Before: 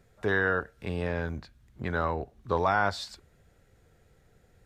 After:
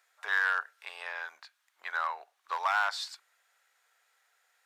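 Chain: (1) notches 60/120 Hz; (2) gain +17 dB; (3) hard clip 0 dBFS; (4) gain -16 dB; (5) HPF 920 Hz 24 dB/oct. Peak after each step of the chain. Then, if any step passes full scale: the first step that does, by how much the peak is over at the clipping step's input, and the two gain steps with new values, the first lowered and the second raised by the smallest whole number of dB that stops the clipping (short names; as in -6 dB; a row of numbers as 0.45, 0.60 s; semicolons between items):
-12.5, +4.5, 0.0, -16.0, -15.5 dBFS; step 2, 4.5 dB; step 2 +12 dB, step 4 -11 dB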